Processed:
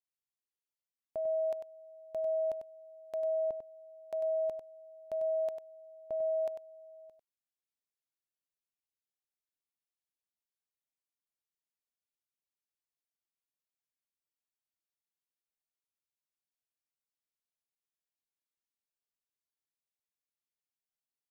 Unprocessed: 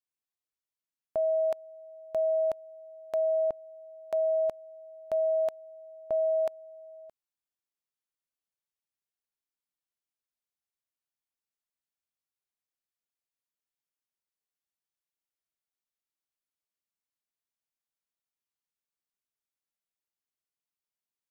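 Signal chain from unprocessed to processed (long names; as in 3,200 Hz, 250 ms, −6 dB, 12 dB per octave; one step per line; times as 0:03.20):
parametric band 1,300 Hz −5 dB 0.93 octaves
single-tap delay 97 ms −8 dB
level −7 dB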